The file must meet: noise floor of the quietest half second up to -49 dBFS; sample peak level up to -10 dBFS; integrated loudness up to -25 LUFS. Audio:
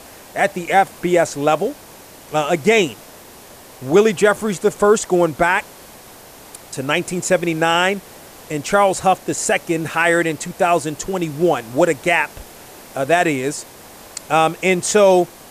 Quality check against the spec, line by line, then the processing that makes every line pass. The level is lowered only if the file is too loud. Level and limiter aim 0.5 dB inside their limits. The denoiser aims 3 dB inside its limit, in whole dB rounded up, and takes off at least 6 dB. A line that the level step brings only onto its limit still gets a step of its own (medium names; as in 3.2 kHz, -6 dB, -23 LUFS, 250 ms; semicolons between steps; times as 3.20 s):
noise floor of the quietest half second -41 dBFS: fail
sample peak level -3.0 dBFS: fail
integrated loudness -17.5 LUFS: fail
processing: noise reduction 6 dB, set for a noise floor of -41 dBFS; trim -8 dB